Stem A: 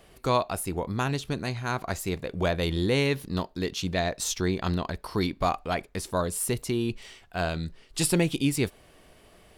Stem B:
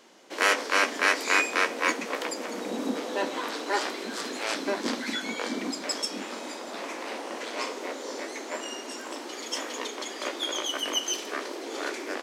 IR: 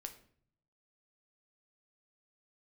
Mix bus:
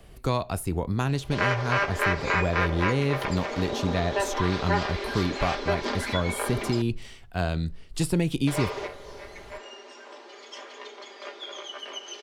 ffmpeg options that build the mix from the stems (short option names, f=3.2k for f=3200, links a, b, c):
-filter_complex "[0:a]acontrast=54,volume=-7.5dB,asplit=3[a][b][c];[b]volume=-15.5dB[d];[1:a]acrossover=split=340 5500:gain=0.0708 1 0.0708[e][f][g];[e][f][g]amix=inputs=3:normalize=0,aecho=1:1:5:0.74,adelay=1000,volume=0.5dB,asplit=3[h][i][j];[h]atrim=end=6.82,asetpts=PTS-STARTPTS,afade=t=out:st=6.816:d=0.004:c=hsin[k];[i]atrim=start=6.82:end=8.47,asetpts=PTS-STARTPTS,volume=0[l];[j]atrim=start=8.47,asetpts=PTS-STARTPTS,afade=t=in:d=0.004:c=hsin[m];[k][l][m]concat=n=3:v=0:a=1,asplit=2[n][o];[o]volume=-9dB[p];[c]apad=whole_len=583333[q];[n][q]sidechaingate=range=-18dB:threshold=-50dB:ratio=16:detection=peak[r];[2:a]atrim=start_sample=2205[s];[d][p]amix=inputs=2:normalize=0[t];[t][s]afir=irnorm=-1:irlink=0[u];[a][r][u]amix=inputs=3:normalize=0,lowshelf=f=170:g=12,acrossover=split=190|1700[v][w][x];[v]acompressor=threshold=-28dB:ratio=4[y];[w]acompressor=threshold=-23dB:ratio=4[z];[x]acompressor=threshold=-34dB:ratio=4[aa];[y][z][aa]amix=inputs=3:normalize=0"